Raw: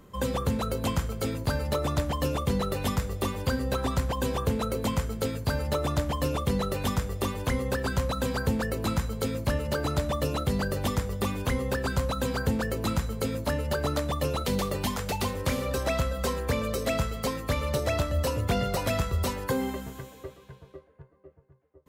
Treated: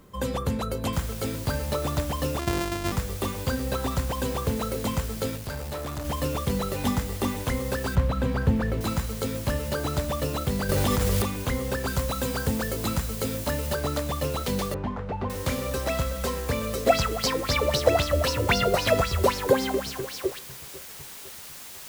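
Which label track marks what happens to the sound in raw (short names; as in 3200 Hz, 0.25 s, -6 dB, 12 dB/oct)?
0.930000	0.930000	noise floor step -68 dB -42 dB
2.390000	2.920000	sample sorter in blocks of 128 samples
5.360000	6.050000	tube stage drive 29 dB, bias 0.5
6.780000	7.420000	small resonant body resonances 250/820/2000 Hz, height 8 dB
7.950000	8.810000	tone controls bass +6 dB, treble -14 dB
10.690000	11.220000	fast leveller amount 100%
11.870000	13.750000	high shelf 5200 Hz +4 dB
14.740000	15.300000	LPF 1300 Hz
16.860000	20.390000	LFO bell 3.8 Hz 340–5400 Hz +17 dB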